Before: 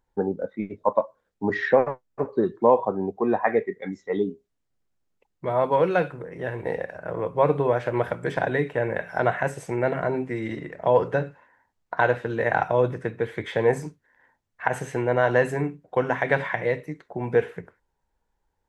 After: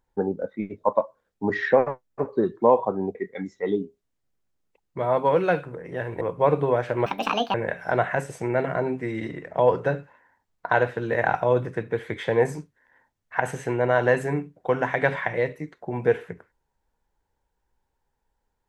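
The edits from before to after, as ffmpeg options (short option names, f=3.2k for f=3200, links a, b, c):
-filter_complex "[0:a]asplit=5[a][b][c][d][e];[a]atrim=end=3.152[f];[b]atrim=start=3.618:end=6.682[g];[c]atrim=start=7.178:end=8.034[h];[d]atrim=start=8.03:end=8.82,asetpts=PTS-STARTPTS,asetrate=72324,aresample=44100,atrim=end_sample=21243,asetpts=PTS-STARTPTS[i];[e]atrim=start=8.816[j];[f][g]acrossfade=d=0.004:c1=hsin:c2=hsin[k];[k][h]acrossfade=d=0.004:c1=hsin:c2=hsin[l];[l][i]acrossfade=d=0.004:c1=hsin:c2=hsin[m];[m][j]acrossfade=d=0.004:c1=hsin:c2=hsin"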